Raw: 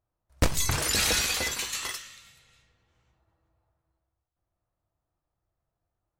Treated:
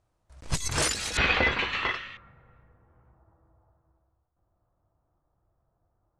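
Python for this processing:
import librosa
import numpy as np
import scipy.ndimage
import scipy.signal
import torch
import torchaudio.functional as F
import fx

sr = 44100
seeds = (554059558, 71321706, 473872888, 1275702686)

y = fx.lowpass(x, sr, hz=fx.steps((0.0, 9800.0), (1.17, 2800.0), (2.17, 1400.0)), slope=24)
y = fx.over_compress(y, sr, threshold_db=-31.0, ratio=-0.5)
y = F.gain(torch.from_numpy(y), 5.0).numpy()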